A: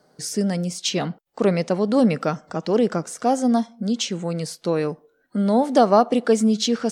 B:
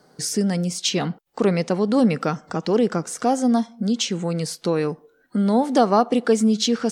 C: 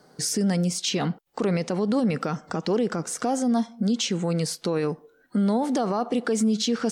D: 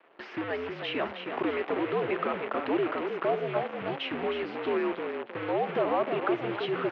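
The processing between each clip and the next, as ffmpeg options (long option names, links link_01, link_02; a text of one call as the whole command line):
ffmpeg -i in.wav -filter_complex "[0:a]equalizer=frequency=610:width_type=o:width=0.25:gain=-6,asplit=2[link_01][link_02];[link_02]acompressor=threshold=-29dB:ratio=6,volume=0.5dB[link_03];[link_01][link_03]amix=inputs=2:normalize=0,volume=-1.5dB" out.wav
ffmpeg -i in.wav -af "alimiter=limit=-16dB:level=0:latency=1:release=37" out.wav
ffmpeg -i in.wav -filter_complex "[0:a]asplit=6[link_01][link_02][link_03][link_04][link_05][link_06];[link_02]adelay=315,afreqshift=51,volume=-7.5dB[link_07];[link_03]adelay=630,afreqshift=102,volume=-14.4dB[link_08];[link_04]adelay=945,afreqshift=153,volume=-21.4dB[link_09];[link_05]adelay=1260,afreqshift=204,volume=-28.3dB[link_10];[link_06]adelay=1575,afreqshift=255,volume=-35.2dB[link_11];[link_01][link_07][link_08][link_09][link_10][link_11]amix=inputs=6:normalize=0,acrusher=bits=6:dc=4:mix=0:aa=0.000001,highpass=frequency=430:width_type=q:width=0.5412,highpass=frequency=430:width_type=q:width=1.307,lowpass=frequency=2900:width_type=q:width=0.5176,lowpass=frequency=2900:width_type=q:width=0.7071,lowpass=frequency=2900:width_type=q:width=1.932,afreqshift=-92" out.wav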